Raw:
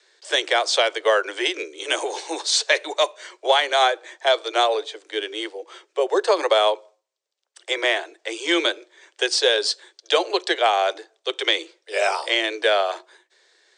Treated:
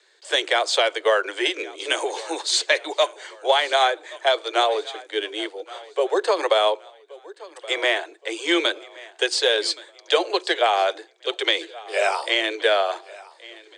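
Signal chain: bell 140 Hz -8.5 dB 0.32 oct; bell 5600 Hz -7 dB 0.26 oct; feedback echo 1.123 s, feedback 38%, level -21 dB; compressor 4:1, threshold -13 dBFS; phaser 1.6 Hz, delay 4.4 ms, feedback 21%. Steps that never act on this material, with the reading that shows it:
bell 140 Hz: input band starts at 290 Hz

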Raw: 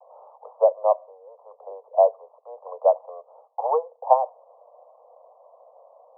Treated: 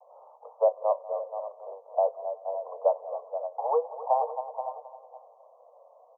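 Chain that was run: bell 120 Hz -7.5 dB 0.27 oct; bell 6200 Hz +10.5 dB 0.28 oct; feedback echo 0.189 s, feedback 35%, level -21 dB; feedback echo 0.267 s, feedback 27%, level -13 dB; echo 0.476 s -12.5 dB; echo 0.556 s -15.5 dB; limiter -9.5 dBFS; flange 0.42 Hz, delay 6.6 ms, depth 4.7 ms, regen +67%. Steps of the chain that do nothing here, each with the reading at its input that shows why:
bell 120 Hz: input band starts at 430 Hz; bell 6200 Hz: input band ends at 1100 Hz

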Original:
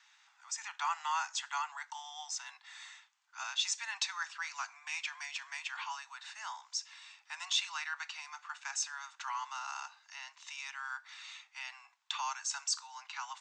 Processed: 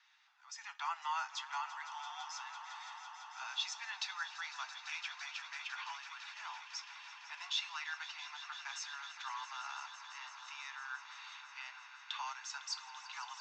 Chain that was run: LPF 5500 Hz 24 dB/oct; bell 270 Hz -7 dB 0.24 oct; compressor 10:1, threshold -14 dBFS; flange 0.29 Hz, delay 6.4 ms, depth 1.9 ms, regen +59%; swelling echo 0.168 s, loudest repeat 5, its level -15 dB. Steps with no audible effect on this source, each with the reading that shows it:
bell 270 Hz: input band starts at 600 Hz; compressor, threshold -14 dBFS: input peak -19.0 dBFS

